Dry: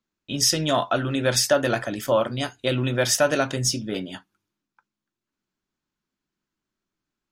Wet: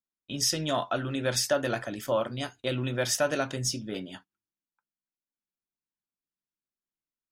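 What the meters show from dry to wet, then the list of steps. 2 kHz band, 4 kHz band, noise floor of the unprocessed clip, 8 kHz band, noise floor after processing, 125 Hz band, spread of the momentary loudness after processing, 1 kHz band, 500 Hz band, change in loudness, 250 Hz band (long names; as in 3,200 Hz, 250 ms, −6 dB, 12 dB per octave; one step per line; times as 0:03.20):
−6.5 dB, −6.5 dB, below −85 dBFS, −6.5 dB, below −85 dBFS, −6.5 dB, 11 LU, −6.5 dB, −6.5 dB, −6.5 dB, −6.5 dB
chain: noise gate −43 dBFS, range −12 dB
level −6.5 dB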